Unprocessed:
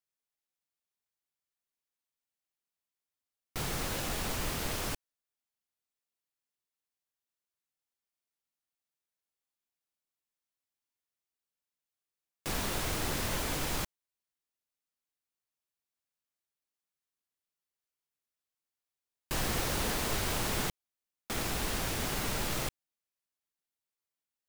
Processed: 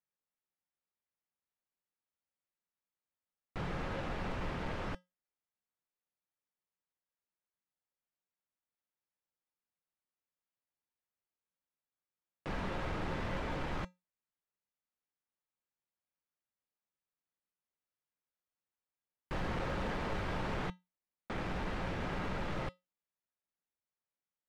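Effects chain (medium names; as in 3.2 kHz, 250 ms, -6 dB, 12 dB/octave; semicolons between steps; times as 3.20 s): low-pass 2 kHz 12 dB/octave; hard clipper -30.5 dBFS, distortion -15 dB; feedback comb 180 Hz, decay 0.2 s, harmonics odd, mix 60%; trim +5.5 dB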